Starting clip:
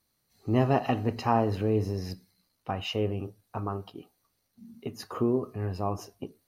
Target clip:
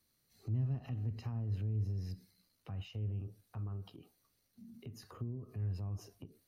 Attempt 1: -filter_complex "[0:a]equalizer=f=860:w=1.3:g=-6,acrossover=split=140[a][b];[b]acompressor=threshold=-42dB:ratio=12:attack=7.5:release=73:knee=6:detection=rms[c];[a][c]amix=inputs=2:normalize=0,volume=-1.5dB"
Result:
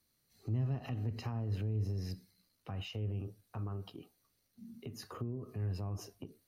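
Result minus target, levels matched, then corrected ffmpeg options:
compressor: peak gain reduction -8 dB
-filter_complex "[0:a]equalizer=f=860:w=1.3:g=-6,acrossover=split=140[a][b];[b]acompressor=threshold=-50.5dB:ratio=12:attack=7.5:release=73:knee=6:detection=rms[c];[a][c]amix=inputs=2:normalize=0,volume=-1.5dB"

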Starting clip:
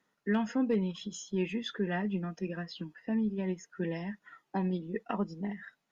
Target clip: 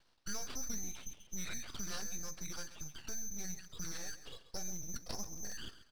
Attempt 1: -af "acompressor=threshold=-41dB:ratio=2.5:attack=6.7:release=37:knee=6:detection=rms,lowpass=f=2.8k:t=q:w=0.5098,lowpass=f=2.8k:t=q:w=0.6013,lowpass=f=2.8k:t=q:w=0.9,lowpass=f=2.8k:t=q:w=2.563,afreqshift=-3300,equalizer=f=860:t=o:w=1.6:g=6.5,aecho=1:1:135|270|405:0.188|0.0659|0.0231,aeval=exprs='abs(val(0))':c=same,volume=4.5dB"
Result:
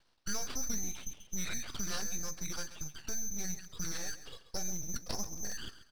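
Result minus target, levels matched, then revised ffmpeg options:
compressor: peak gain reduction -5 dB
-af "acompressor=threshold=-49dB:ratio=2.5:attack=6.7:release=37:knee=6:detection=rms,lowpass=f=2.8k:t=q:w=0.5098,lowpass=f=2.8k:t=q:w=0.6013,lowpass=f=2.8k:t=q:w=0.9,lowpass=f=2.8k:t=q:w=2.563,afreqshift=-3300,equalizer=f=860:t=o:w=1.6:g=6.5,aecho=1:1:135|270|405:0.188|0.0659|0.0231,aeval=exprs='abs(val(0))':c=same,volume=4.5dB"

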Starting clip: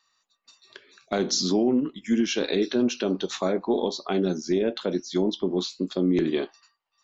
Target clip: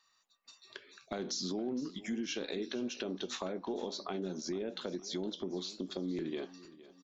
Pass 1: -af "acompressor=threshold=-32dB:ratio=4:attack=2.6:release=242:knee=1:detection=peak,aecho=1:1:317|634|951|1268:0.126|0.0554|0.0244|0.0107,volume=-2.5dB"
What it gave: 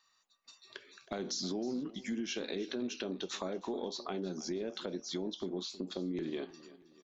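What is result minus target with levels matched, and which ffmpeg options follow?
echo 0.147 s early
-af "acompressor=threshold=-32dB:ratio=4:attack=2.6:release=242:knee=1:detection=peak,aecho=1:1:464|928|1392|1856:0.126|0.0554|0.0244|0.0107,volume=-2.5dB"

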